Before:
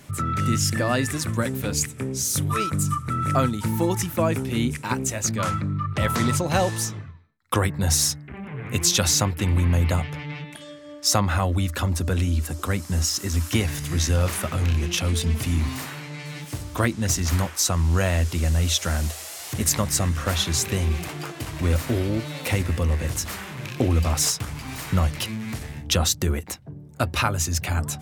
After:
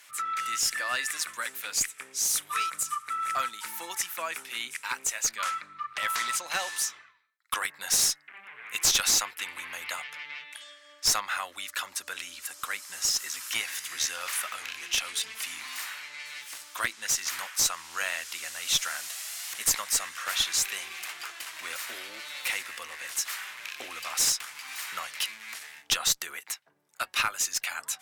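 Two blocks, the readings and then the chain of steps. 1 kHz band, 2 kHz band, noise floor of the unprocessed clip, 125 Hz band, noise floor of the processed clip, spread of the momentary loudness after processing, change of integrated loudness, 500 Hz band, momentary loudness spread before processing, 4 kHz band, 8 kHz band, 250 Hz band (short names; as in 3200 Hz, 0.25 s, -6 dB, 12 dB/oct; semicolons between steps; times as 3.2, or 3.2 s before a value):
-5.0 dB, -0.5 dB, -41 dBFS, -36.0 dB, -56 dBFS, 13 LU, -5.5 dB, -18.0 dB, 12 LU, -1.5 dB, -2.0 dB, -28.0 dB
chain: Chebyshev high-pass 1600 Hz, order 2; one-sided clip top -21.5 dBFS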